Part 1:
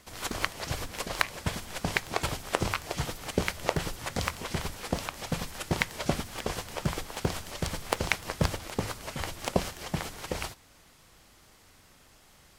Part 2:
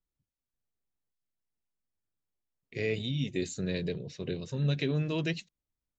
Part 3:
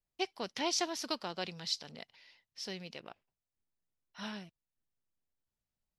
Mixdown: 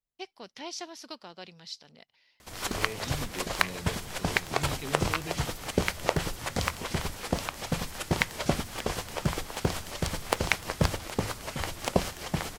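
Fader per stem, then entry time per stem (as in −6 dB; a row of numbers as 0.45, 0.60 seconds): +1.5, −8.5, −6.0 decibels; 2.40, 0.00, 0.00 seconds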